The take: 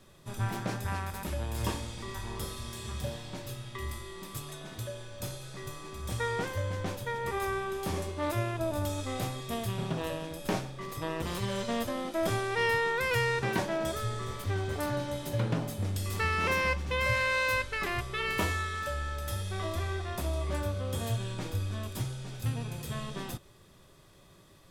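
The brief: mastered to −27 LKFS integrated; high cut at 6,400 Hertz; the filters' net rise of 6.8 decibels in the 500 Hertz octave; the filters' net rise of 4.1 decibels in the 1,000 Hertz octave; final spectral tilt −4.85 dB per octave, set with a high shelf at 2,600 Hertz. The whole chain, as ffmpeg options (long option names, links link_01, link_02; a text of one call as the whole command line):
ffmpeg -i in.wav -af "lowpass=6400,equalizer=frequency=500:width_type=o:gain=7.5,equalizer=frequency=1000:width_type=o:gain=3.5,highshelf=frequency=2600:gain=-3.5,volume=3dB" out.wav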